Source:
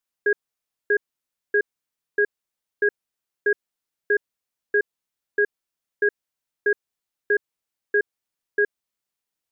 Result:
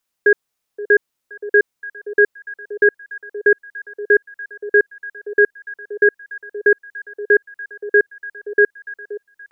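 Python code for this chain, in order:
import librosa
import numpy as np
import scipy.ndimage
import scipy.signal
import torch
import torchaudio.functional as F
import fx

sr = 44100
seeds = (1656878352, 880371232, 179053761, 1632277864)

p1 = x + fx.echo_stepped(x, sr, ms=523, hz=590.0, octaves=0.7, feedback_pct=70, wet_db=-10, dry=0)
y = p1 * librosa.db_to_amplitude(8.0)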